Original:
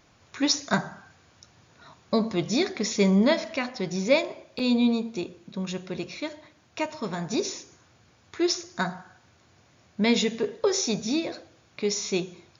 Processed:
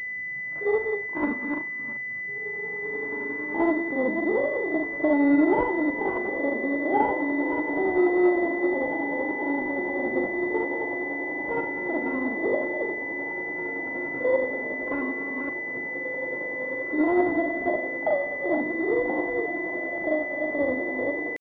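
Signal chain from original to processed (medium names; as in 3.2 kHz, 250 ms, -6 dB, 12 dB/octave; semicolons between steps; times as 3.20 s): chunks repeated in reverse 166 ms, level -6.5 dB; in parallel at +2 dB: compression 6:1, threshold -34 dBFS, peak gain reduction 18 dB; on the sum: pitch shift +7 st; on a send: echo that smears into a reverb 1303 ms, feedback 60%, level -7 dB; on the sum: granular stretch 1.7×, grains 190 ms; distance through air 260 m; class-D stage that switches slowly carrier 2 kHz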